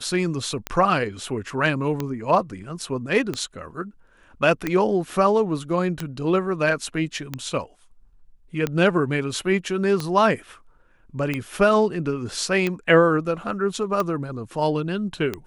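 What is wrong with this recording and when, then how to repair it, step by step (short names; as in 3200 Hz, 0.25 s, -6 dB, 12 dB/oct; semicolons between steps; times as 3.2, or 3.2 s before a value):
tick 45 rpm -11 dBFS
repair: de-click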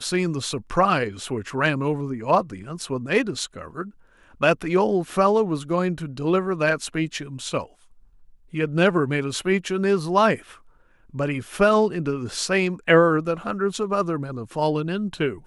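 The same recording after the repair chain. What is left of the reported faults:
none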